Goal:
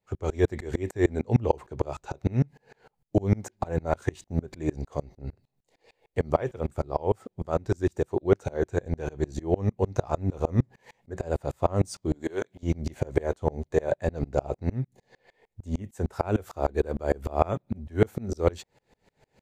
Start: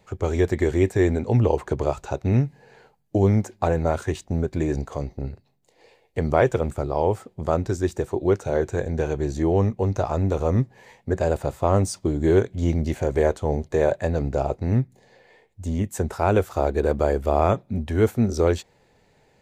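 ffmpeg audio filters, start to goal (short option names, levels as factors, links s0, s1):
-filter_complex "[0:a]asettb=1/sr,asplit=3[s0][s1][s2];[s0]atrim=end=12.144[s3];[s1]atrim=start=12.14:end=12.63,asetpts=PTS-STARTPTS,afade=t=in:d=0.004:c=qsin,afade=t=out:st=0.486:d=0.004:c=qsin,highpass=f=730:p=1[s4];[s2]atrim=start=12.626[s5];[s3][s4]acrossfade=d=0.004:c1=hsin:c2=qsin[s6];[s6][s5]acrossfade=d=0.004:c1=qsin:c2=hsin,aeval=exprs='val(0)*pow(10,-31*if(lt(mod(-6.6*n/s,1),2*abs(-6.6)/1000),1-mod(-6.6*n/s,1)/(2*abs(-6.6)/1000),(mod(-6.6*n/s,1)-2*abs(-6.6)/1000)/(1-2*abs(-6.6)/1000))/20)':c=same,volume=1.41"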